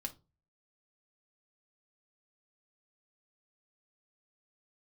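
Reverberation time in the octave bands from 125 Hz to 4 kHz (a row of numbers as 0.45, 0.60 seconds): 0.55, 0.40, 0.30, 0.25, 0.20, 0.20 seconds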